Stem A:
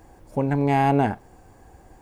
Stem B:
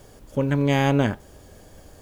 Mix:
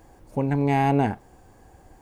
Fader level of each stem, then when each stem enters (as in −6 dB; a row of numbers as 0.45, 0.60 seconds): −2.0, −16.0 decibels; 0.00, 0.00 seconds